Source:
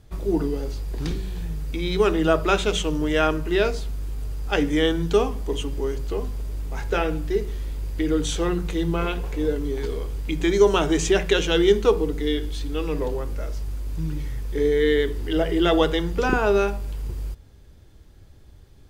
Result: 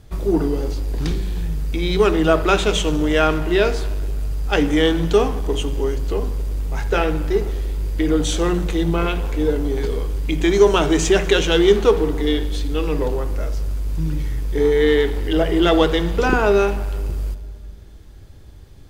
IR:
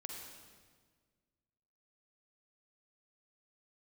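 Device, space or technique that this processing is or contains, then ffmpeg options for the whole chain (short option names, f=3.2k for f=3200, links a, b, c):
saturated reverb return: -filter_complex "[0:a]asplit=2[a][b];[1:a]atrim=start_sample=2205[c];[b][c]afir=irnorm=-1:irlink=0,asoftclip=type=tanh:threshold=-27dB,volume=-1.5dB[d];[a][d]amix=inputs=2:normalize=0,volume=2.5dB"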